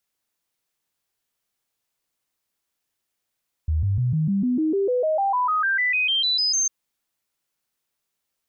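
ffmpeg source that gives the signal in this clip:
-f lavfi -i "aevalsrc='0.119*clip(min(mod(t,0.15),0.15-mod(t,0.15))/0.005,0,1)*sin(2*PI*78.3*pow(2,floor(t/0.15)/3)*mod(t,0.15))':d=3:s=44100"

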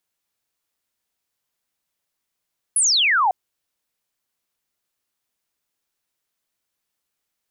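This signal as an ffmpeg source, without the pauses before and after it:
-f lavfi -i "aevalsrc='0.188*clip(t/0.002,0,1)*clip((0.55-t)/0.002,0,1)*sin(2*PI*11000*0.55/log(710/11000)*(exp(log(710/11000)*t/0.55)-1))':d=0.55:s=44100"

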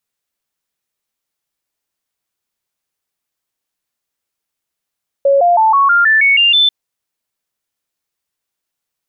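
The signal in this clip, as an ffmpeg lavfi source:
-f lavfi -i "aevalsrc='0.447*clip(min(mod(t,0.16),0.16-mod(t,0.16))/0.005,0,1)*sin(2*PI*555*pow(2,floor(t/0.16)/3)*mod(t,0.16))':d=1.44:s=44100"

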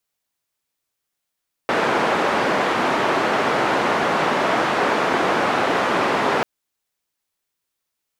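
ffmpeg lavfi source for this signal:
-f lavfi -i "anoisesrc=c=white:d=4.74:r=44100:seed=1,highpass=f=230,lowpass=f=1200,volume=-1.6dB"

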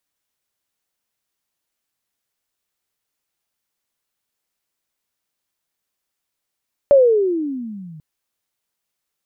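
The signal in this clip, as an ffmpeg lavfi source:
-f lavfi -i "aevalsrc='pow(10,(-6-29*t/1.09)/20)*sin(2*PI*581*1.09/(-23.5*log(2)/12)*(exp(-23.5*log(2)/12*t/1.09)-1))':d=1.09:s=44100"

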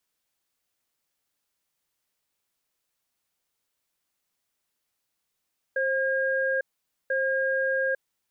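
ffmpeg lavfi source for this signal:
-f lavfi -i "aevalsrc='0.0531*(sin(2*PI*531*t)+sin(2*PI*1620*t))*clip(min(mod(t,1.34),0.85-mod(t,1.34))/0.005,0,1)':d=2.19:s=44100"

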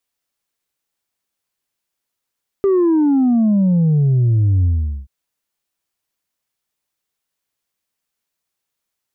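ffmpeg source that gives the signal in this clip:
-f lavfi -i "aevalsrc='0.266*clip((2.43-t)/0.43,0,1)*tanh(1.26*sin(2*PI*400*2.43/log(65/400)*(exp(log(65/400)*t/2.43)-1)))/tanh(1.26)':d=2.43:s=44100"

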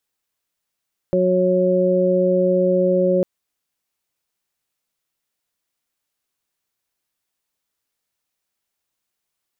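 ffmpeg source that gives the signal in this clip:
-f lavfi -i "aevalsrc='0.0944*sin(2*PI*183*t)+0.106*sin(2*PI*366*t)+0.15*sin(2*PI*549*t)':d=2.1:s=44100"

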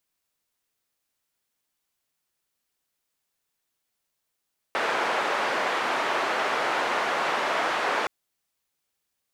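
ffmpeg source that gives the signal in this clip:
-f lavfi -i "anoisesrc=c=white:d=3.32:r=44100:seed=1,highpass=f=470,lowpass=f=1400,volume=-8dB"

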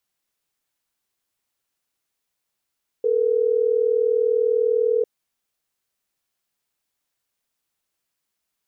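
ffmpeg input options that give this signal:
-f lavfi -i "aevalsrc='0.106*(sin(2*PI*440*t)+sin(2*PI*480*t))*clip(min(mod(t,6),2-mod(t,6))/0.005,0,1)':d=3.12:s=44100"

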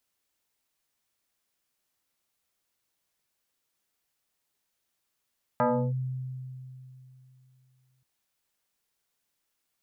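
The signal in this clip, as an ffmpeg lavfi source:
-f lavfi -i "aevalsrc='0.1*pow(10,-3*t/3)*sin(2*PI*129*t+3.2*clip(1-t/0.33,0,1)*sin(2*PI*2.86*129*t))':d=2.43:s=44100"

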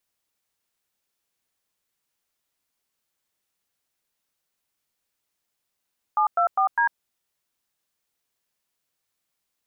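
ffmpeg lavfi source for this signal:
-f lavfi -i "aevalsrc='0.1*clip(min(mod(t,0.202),0.099-mod(t,0.202))/0.002,0,1)*(eq(floor(t/0.202),0)*(sin(2*PI*852*mod(t,0.202))+sin(2*PI*1209*mod(t,0.202)))+eq(floor(t/0.202),1)*(sin(2*PI*697*mod(t,0.202))+sin(2*PI*1336*mod(t,0.202)))+eq(floor(t/0.202),2)*(sin(2*PI*770*mod(t,0.202))+sin(2*PI*1209*mod(t,0.202)))+eq(floor(t/0.202),3)*(sin(2*PI*941*mod(t,0.202))+sin(2*PI*1633*mod(t,0.202))))':d=0.808:s=44100"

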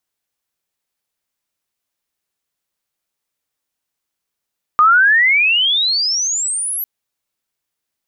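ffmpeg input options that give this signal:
-f lavfi -i "aevalsrc='pow(10,(-6.5-12.5*t/2.05)/20)*sin(2*PI*1200*2.05/log(12000/1200)*(exp(log(12000/1200)*t/2.05)-1))':d=2.05:s=44100"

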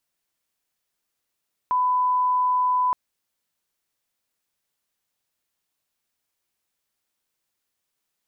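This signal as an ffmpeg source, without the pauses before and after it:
-f lavfi -i "sine=f=1000:d=1.22:r=44100,volume=0.06dB"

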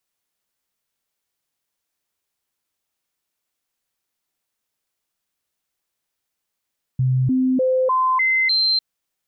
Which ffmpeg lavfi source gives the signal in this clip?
-f lavfi -i "aevalsrc='0.178*clip(min(mod(t,0.3),0.3-mod(t,0.3))/0.005,0,1)*sin(2*PI*129*pow(2,floor(t/0.3)/1)*mod(t,0.3))':d=1.8:s=44100"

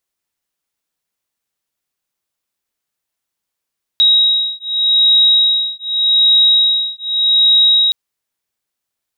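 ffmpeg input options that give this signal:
-f lavfi -i "aevalsrc='0.237*(sin(2*PI*3810*t)+sin(2*PI*3810.84*t))':d=3.92:s=44100"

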